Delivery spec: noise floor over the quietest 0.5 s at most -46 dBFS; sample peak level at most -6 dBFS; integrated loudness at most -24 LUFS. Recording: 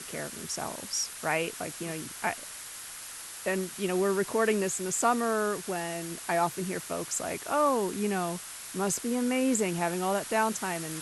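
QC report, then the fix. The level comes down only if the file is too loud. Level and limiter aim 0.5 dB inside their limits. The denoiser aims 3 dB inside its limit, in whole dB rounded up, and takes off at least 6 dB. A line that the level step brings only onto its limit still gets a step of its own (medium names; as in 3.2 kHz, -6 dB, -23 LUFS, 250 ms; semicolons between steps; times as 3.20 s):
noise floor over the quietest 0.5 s -43 dBFS: fail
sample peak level -13.0 dBFS: pass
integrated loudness -30.0 LUFS: pass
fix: noise reduction 6 dB, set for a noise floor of -43 dBFS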